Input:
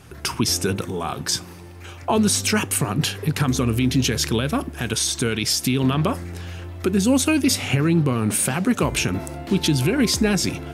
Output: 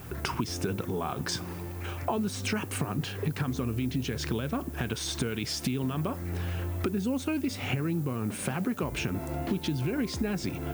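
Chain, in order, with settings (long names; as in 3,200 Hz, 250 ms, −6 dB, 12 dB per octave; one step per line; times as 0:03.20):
low-pass filter 2,000 Hz 6 dB per octave
downward compressor, threshold −31 dBFS, peak gain reduction 16 dB
background noise violet −54 dBFS
level +3 dB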